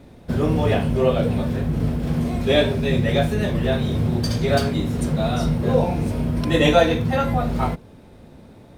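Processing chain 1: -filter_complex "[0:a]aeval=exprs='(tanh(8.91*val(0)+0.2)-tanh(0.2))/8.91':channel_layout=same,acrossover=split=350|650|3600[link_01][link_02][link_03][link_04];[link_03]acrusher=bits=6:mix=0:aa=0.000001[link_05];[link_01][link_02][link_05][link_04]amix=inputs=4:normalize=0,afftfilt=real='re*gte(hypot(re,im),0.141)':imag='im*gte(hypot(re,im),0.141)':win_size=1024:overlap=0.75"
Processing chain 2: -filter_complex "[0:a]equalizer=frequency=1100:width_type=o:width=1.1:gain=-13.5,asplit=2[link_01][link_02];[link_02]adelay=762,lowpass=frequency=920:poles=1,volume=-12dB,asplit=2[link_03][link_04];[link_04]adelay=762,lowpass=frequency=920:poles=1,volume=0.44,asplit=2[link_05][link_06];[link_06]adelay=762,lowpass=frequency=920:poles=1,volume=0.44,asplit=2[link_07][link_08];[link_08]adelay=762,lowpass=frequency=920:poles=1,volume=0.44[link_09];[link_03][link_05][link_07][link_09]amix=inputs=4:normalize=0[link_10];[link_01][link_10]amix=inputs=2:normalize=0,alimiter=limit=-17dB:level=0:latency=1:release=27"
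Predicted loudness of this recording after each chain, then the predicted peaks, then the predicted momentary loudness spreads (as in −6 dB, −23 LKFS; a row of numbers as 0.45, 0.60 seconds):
−26.0, −25.5 LKFS; −13.0, −17.0 dBFS; 2, 4 LU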